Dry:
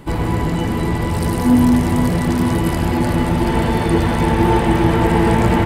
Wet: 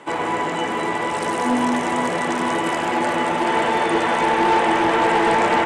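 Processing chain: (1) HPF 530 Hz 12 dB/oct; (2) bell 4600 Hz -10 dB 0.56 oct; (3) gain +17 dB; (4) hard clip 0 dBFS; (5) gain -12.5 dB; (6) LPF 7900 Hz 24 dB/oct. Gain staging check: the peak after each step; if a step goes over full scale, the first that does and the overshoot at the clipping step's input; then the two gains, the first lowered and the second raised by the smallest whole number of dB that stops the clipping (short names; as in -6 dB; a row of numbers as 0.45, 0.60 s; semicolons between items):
-8.5, -9.0, +8.0, 0.0, -12.5, -11.0 dBFS; step 3, 8.0 dB; step 3 +9 dB, step 5 -4.5 dB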